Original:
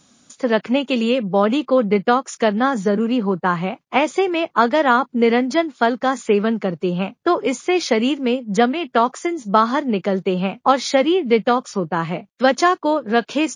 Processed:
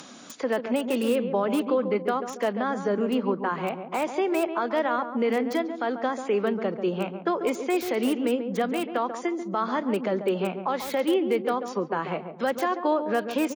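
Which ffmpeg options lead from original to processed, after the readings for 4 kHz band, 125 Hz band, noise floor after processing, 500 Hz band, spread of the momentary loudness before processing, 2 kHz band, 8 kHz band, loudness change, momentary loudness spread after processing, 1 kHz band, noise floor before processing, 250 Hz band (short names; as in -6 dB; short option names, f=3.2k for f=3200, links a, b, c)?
-11.5 dB, -10.5 dB, -40 dBFS, -7.0 dB, 5 LU, -10.0 dB, -9.5 dB, -8.0 dB, 5 LU, -9.5 dB, -63 dBFS, -8.0 dB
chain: -filter_complex "[0:a]highpass=270,aemphasis=mode=reproduction:type=50fm,alimiter=limit=-12.5dB:level=0:latency=1:release=109,asplit=2[a][b];[b]adelay=140,lowpass=f=870:p=1,volume=-7dB,asplit=2[c][d];[d]adelay=140,lowpass=f=870:p=1,volume=0.46,asplit=2[e][f];[f]adelay=140,lowpass=f=870:p=1,volume=0.46,asplit=2[g][h];[h]adelay=140,lowpass=f=870:p=1,volume=0.46,asplit=2[i][j];[j]adelay=140,lowpass=f=870:p=1,volume=0.46[k];[c][e][g][i][k]amix=inputs=5:normalize=0[l];[a][l]amix=inputs=2:normalize=0,acompressor=mode=upward:threshold=-28dB:ratio=2.5,acrossover=split=350|2500[m][n][o];[o]aeval=exprs='(mod(31.6*val(0)+1,2)-1)/31.6':c=same[p];[m][n][p]amix=inputs=3:normalize=0,volume=-3.5dB"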